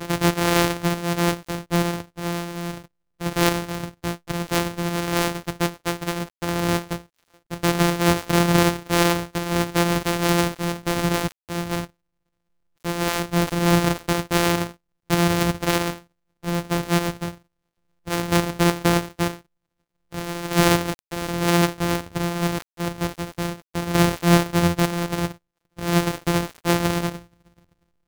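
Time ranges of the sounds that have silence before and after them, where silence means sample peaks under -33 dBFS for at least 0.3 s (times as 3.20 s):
3.21–6.99 s
7.51–11.85 s
12.85–14.71 s
15.10–15.98 s
16.43–17.32 s
18.07–19.37 s
20.13–25.32 s
25.79–27.19 s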